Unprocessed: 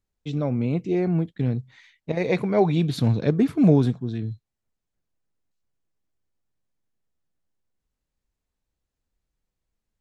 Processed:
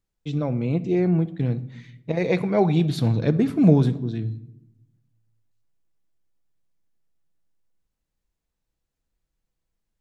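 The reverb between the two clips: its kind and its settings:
rectangular room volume 2,800 cubic metres, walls furnished, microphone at 0.7 metres

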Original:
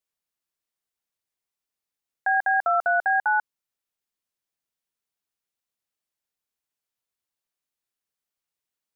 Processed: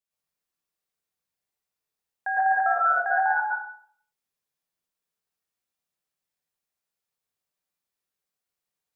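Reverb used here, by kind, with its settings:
dense smooth reverb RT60 0.56 s, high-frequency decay 0.65×, pre-delay 95 ms, DRR −6.5 dB
level −6 dB

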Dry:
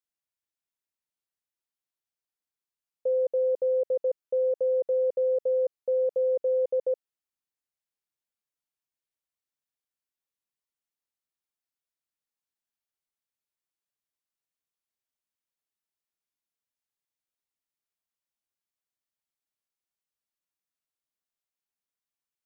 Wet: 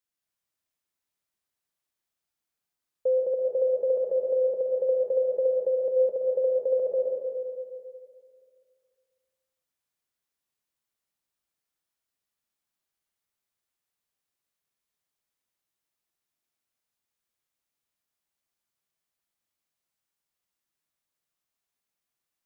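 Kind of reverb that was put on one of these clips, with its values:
dense smooth reverb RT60 2.2 s, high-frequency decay 0.7×, pre-delay 110 ms, DRR −2 dB
level +2 dB

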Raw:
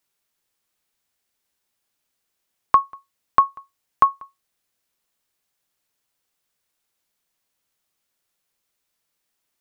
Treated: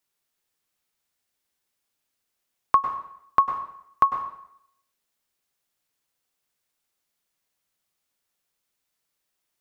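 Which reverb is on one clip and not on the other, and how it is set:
dense smooth reverb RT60 0.69 s, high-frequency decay 0.95×, pre-delay 90 ms, DRR 6 dB
level −3.5 dB

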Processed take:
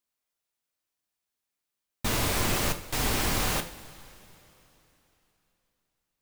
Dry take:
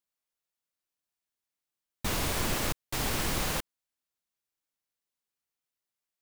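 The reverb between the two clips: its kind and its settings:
coupled-rooms reverb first 0.39 s, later 3.4 s, from −17 dB, DRR 6 dB
level +2.5 dB

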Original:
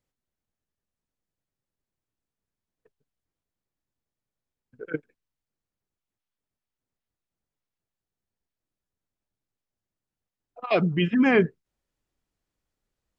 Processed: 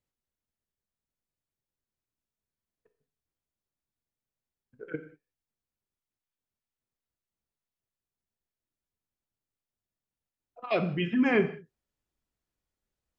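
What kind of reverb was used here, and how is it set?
reverb whose tail is shaped and stops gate 220 ms falling, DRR 7.5 dB
level −5.5 dB

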